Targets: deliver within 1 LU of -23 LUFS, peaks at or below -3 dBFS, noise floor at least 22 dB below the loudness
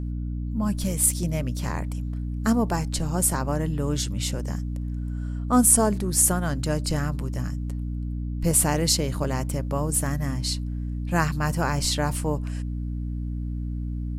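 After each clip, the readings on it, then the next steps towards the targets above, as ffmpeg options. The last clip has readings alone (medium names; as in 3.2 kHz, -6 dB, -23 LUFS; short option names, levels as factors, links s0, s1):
hum 60 Hz; highest harmonic 300 Hz; hum level -27 dBFS; loudness -25.0 LUFS; peak level -2.5 dBFS; loudness target -23.0 LUFS
-> -af "bandreject=f=60:t=h:w=6,bandreject=f=120:t=h:w=6,bandreject=f=180:t=h:w=6,bandreject=f=240:t=h:w=6,bandreject=f=300:t=h:w=6"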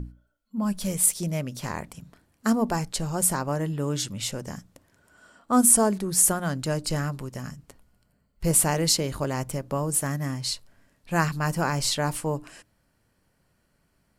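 hum not found; loudness -24.5 LUFS; peak level -3.5 dBFS; loudness target -23.0 LUFS
-> -af "volume=1.19,alimiter=limit=0.708:level=0:latency=1"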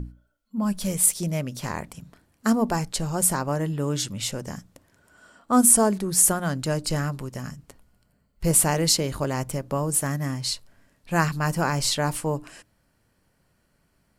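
loudness -23.5 LUFS; peak level -3.0 dBFS; noise floor -68 dBFS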